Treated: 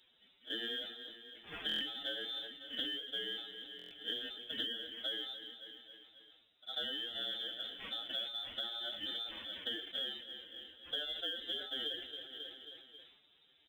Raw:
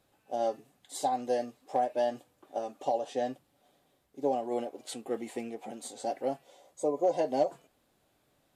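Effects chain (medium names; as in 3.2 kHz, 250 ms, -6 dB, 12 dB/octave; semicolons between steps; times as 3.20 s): bit-reversed sample order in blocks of 16 samples; treble shelf 2.3 kHz +6.5 dB; time stretch by phase-locked vocoder 1.6×; flange 0.6 Hz, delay 5.5 ms, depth 3 ms, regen -11%; frequency inversion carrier 3.8 kHz; on a send: feedback delay 270 ms, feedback 58%, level -21.5 dB; on the sum: compression 20:1, threshold -43 dBFS, peak gain reduction 20.5 dB; bass shelf 100 Hz -7 dB; in parallel at -7.5 dB: short-mantissa float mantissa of 2-bit; on the sum: buffer glitch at 1.67/3.77 s, samples 1024, times 5; decay stretcher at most 65 dB/s; trim +3 dB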